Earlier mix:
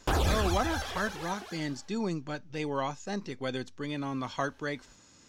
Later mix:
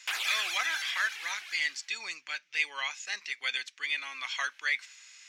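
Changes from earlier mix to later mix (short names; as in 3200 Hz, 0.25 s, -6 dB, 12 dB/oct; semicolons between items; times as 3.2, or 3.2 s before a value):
speech +5.0 dB; master: add resonant high-pass 2200 Hz, resonance Q 3.3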